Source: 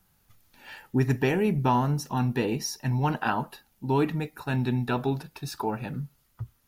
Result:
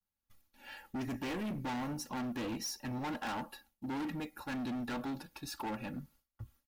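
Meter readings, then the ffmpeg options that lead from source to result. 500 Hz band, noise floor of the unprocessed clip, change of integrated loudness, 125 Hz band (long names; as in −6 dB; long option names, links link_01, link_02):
−15.5 dB, −67 dBFS, −12.0 dB, −18.5 dB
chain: -af "aecho=1:1:3.6:0.66,agate=range=-33dB:threshold=-51dB:ratio=3:detection=peak,asoftclip=type=hard:threshold=-29dB,volume=-6.5dB"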